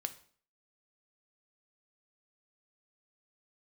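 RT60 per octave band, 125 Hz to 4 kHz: 0.55, 0.55, 0.50, 0.50, 0.45, 0.45 seconds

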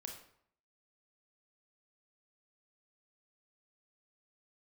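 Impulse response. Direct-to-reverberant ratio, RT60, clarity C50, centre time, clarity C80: 2.0 dB, 0.65 s, 6.0 dB, 27 ms, 9.5 dB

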